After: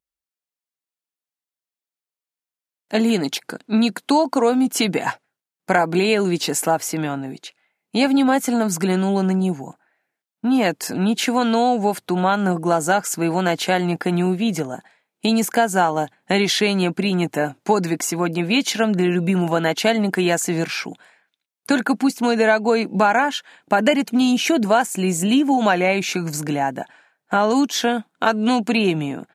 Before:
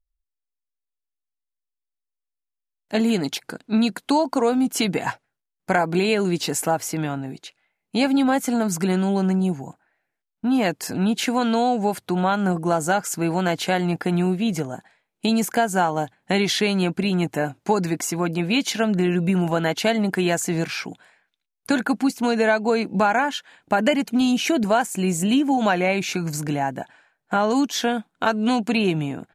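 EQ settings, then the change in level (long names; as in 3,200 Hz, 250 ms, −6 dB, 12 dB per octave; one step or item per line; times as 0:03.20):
high-pass filter 160 Hz
+3.0 dB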